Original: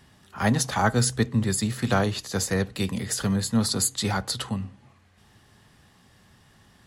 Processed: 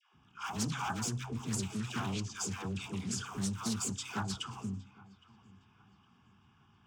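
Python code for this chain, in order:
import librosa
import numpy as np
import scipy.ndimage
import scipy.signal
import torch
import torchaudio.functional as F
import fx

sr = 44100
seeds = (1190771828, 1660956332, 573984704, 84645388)

y = fx.block_float(x, sr, bits=5)
y = np.clip(10.0 ** (23.5 / 20.0) * y, -1.0, 1.0) / 10.0 ** (23.5 / 20.0)
y = fx.echo_feedback(y, sr, ms=813, feedback_pct=40, wet_db=-22)
y = fx.env_lowpass(y, sr, base_hz=2700.0, full_db=-24.0)
y = fx.highpass(y, sr, hz=130.0, slope=6)
y = fx.fixed_phaser(y, sr, hz=2800.0, stages=8)
y = fx.dispersion(y, sr, late='lows', ms=143.0, hz=690.0)
y = fx.doppler_dist(y, sr, depth_ms=0.27)
y = y * librosa.db_to_amplitude(-4.5)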